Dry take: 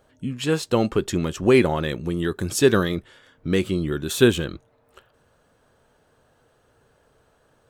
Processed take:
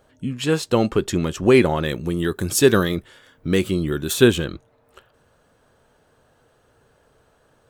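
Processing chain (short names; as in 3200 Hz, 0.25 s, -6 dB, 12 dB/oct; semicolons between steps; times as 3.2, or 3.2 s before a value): 1.85–4.14 high shelf 11000 Hz +10.5 dB; gain +2 dB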